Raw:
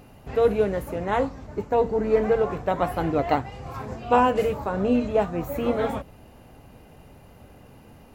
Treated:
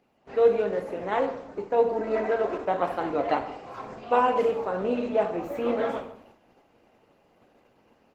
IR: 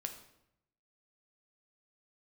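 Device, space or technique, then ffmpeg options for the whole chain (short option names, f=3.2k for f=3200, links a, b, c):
speakerphone in a meeting room: -filter_complex "[0:a]asettb=1/sr,asplit=3[a][b][c];[a]atrim=end=1.894[d];[b]atrim=start=1.89:end=2.65,asetpts=PTS-STARTPTS,afade=t=in:d=0.004:c=qsin,afade=t=out:st=0.756:d=0.004:c=qsin,aecho=1:1:3.1:0.75,atrim=end_sample=33516[e];[c]atrim=start=2.646[f];[d][e]acrossfade=d=0.004:c1=hsin:c2=qsin[g];[g][f]acrossfade=d=0.004:c1=qsin:c2=hsin,acrossover=split=220 6800:gain=0.1 1 0.178[h][i][j];[h][i][j]amix=inputs=3:normalize=0[k];[1:a]atrim=start_sample=2205[l];[k][l]afir=irnorm=-1:irlink=0,asplit=2[m][n];[n]adelay=150,highpass=300,lowpass=3.4k,asoftclip=type=hard:threshold=-18.5dB,volume=-21dB[o];[m][o]amix=inputs=2:normalize=0,dynaudnorm=f=150:g=3:m=6.5dB,agate=range=-7dB:threshold=-46dB:ratio=16:detection=peak,volume=-6dB" -ar 48000 -c:a libopus -b:a 16k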